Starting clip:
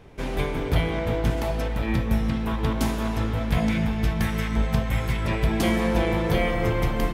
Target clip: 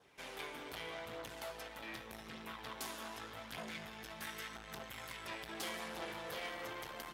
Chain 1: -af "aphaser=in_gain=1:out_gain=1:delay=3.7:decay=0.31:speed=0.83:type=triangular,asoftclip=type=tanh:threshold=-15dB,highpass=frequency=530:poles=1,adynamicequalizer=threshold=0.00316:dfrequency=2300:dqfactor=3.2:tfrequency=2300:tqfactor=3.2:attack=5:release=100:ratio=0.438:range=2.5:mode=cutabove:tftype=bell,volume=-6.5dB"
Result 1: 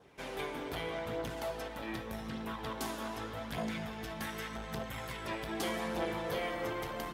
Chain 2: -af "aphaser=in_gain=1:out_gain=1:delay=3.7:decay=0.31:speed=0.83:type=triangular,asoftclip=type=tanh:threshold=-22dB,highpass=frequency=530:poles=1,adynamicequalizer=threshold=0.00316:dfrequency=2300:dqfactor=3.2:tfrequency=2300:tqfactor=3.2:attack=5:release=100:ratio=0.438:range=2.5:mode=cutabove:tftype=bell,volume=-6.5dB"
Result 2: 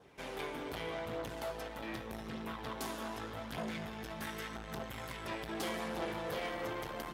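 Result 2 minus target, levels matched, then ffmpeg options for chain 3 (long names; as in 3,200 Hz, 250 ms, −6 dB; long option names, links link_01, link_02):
500 Hz band +3.0 dB
-af "aphaser=in_gain=1:out_gain=1:delay=3.7:decay=0.31:speed=0.83:type=triangular,asoftclip=type=tanh:threshold=-22dB,highpass=frequency=1700:poles=1,adynamicequalizer=threshold=0.00316:dfrequency=2300:dqfactor=3.2:tfrequency=2300:tqfactor=3.2:attack=5:release=100:ratio=0.438:range=2.5:mode=cutabove:tftype=bell,volume=-6.5dB"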